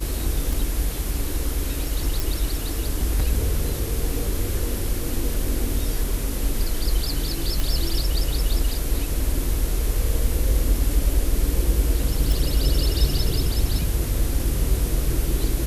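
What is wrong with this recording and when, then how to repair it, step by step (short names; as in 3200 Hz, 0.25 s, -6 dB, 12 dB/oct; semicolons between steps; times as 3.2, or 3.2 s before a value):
0.53 pop
2.2 pop
7.6 pop
12.32 pop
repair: de-click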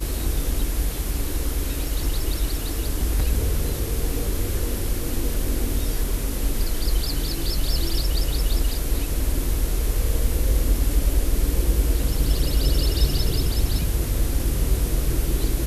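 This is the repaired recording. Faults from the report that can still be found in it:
none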